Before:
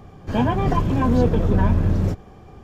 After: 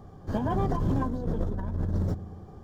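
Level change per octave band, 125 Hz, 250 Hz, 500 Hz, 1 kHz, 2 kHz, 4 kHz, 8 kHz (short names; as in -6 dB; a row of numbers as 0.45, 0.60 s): -9.0 dB, -9.5 dB, -9.5 dB, -9.0 dB, -12.5 dB, under -10 dB, n/a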